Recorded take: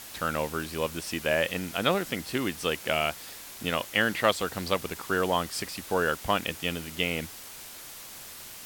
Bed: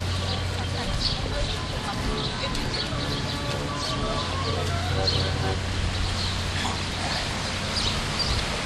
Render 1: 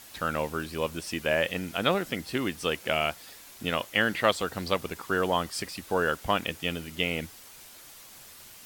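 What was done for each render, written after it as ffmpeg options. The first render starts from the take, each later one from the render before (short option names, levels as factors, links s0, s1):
-af "afftdn=nr=6:nf=-44"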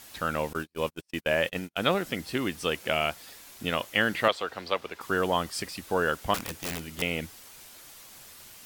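-filter_complex "[0:a]asettb=1/sr,asplit=3[s0][s1][s2];[s0]atrim=end=0.534[s3];[s1]atrim=start=0.53:end=1.92,asetpts=PTS-STARTPTS,afade=t=in:d=0.004:c=qsin,afade=t=out:st=1.386:d=0.004:c=qsin,agate=range=0.00562:threshold=0.02:ratio=16:release=100:detection=peak[s4];[s2]atrim=start=1.916[s5];[s3][s4]acrossfade=d=0.004:c1=hsin:c2=qsin[s6];[s6][s5]acrossfade=d=0.004:c1=qsin:c2=hsin,asettb=1/sr,asplit=3[s7][s8][s9];[s7]atrim=end=4.284[s10];[s8]atrim=start=4.28:end=5.01,asetpts=PTS-STARTPTS,afade=t=in:d=0.004:c=qsin,afade=t=out:st=0.726:d=0.004:c=qsin,acrossover=split=370 4800:gain=0.224 1 0.224[s11][s12][s13];[s11][s12][s13]amix=inputs=3:normalize=0[s14];[s9]atrim=start=5.006[s15];[s10][s14]acrossfade=d=0.004:c1=hsin:c2=qsin[s16];[s16][s15]acrossfade=d=0.004:c1=qsin:c2=hsin,asettb=1/sr,asplit=3[s17][s18][s19];[s17]atrim=end=6.344[s20];[s18]atrim=start=6.34:end=7.02,asetpts=PTS-STARTPTS,afade=t=in:d=0.004:c=qsin,afade=t=out:st=0.676:d=0.004:c=qsin,aeval=exprs='(mod(21.1*val(0)+1,2)-1)/21.1':c=same[s21];[s19]atrim=start=7.016[s22];[s20][s21]acrossfade=d=0.004:c1=hsin:c2=qsin[s23];[s23][s22]acrossfade=d=0.004:c1=qsin:c2=hsin"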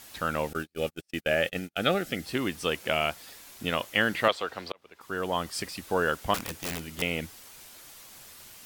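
-filter_complex "[0:a]asettb=1/sr,asplit=3[s0][s1][s2];[s0]atrim=end=0.474[s3];[s1]atrim=start=0.47:end=2.26,asetpts=PTS-STARTPTS,afade=t=in:d=0.004:c=qsin,afade=t=out:st=1.786:d=0.004:c=qsin,asuperstop=centerf=1000:order=8:qfactor=3.5[s4];[s2]atrim=start=2.256[s5];[s3][s4]acrossfade=d=0.004:c1=hsin:c2=qsin[s6];[s6][s5]acrossfade=d=0.004:c1=qsin:c2=hsin,asplit=2[s7][s8];[s7]atrim=end=4.72,asetpts=PTS-STARTPTS,afade=t=out:st=4.716:d=0.004:c=hsin[s9];[s8]atrim=start=4.72,asetpts=PTS-STARTPTS,afade=t=in:d=0.86[s10];[s9][s10]concat=n=2:v=0:a=1"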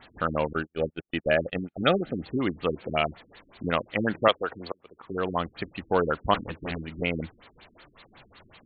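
-filter_complex "[0:a]asplit=2[s0][s1];[s1]acrusher=bits=2:mode=log:mix=0:aa=0.000001,volume=0.501[s2];[s0][s2]amix=inputs=2:normalize=0,afftfilt=real='re*lt(b*sr/1024,370*pow(4600/370,0.5+0.5*sin(2*PI*5.4*pts/sr)))':imag='im*lt(b*sr/1024,370*pow(4600/370,0.5+0.5*sin(2*PI*5.4*pts/sr)))':win_size=1024:overlap=0.75"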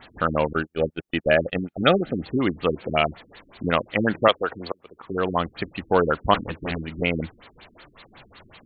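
-af "volume=1.68,alimiter=limit=0.708:level=0:latency=1"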